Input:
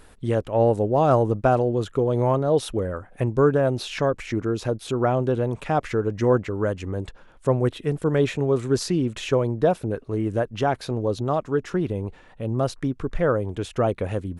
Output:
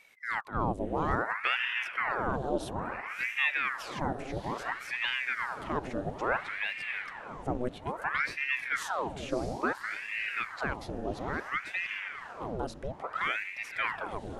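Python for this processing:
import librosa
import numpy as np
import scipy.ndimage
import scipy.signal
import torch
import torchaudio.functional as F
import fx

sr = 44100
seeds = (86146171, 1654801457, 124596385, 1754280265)

y = fx.echo_diffused(x, sr, ms=629, feedback_pct=40, wet_db=-8)
y = fx.ring_lfo(y, sr, carrier_hz=1200.0, swing_pct=90, hz=0.59)
y = y * librosa.db_to_amplitude(-8.5)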